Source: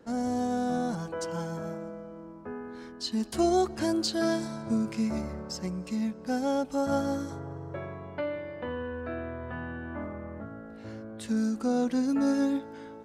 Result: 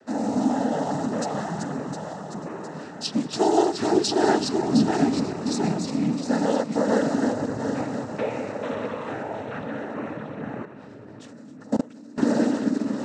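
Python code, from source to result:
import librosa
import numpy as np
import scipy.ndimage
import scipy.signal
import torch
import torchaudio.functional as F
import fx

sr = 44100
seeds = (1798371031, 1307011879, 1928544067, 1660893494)

p1 = fx.reverse_delay_fb(x, sr, ms=355, feedback_pct=70, wet_db=-5.0)
p2 = fx.noise_vocoder(p1, sr, seeds[0], bands=12)
p3 = fx.level_steps(p2, sr, step_db=24, at=(10.65, 12.18))
p4 = p3 + fx.echo_single(p3, sr, ms=1199, db=-22.0, dry=0)
y = p4 * librosa.db_to_amplitude(4.5)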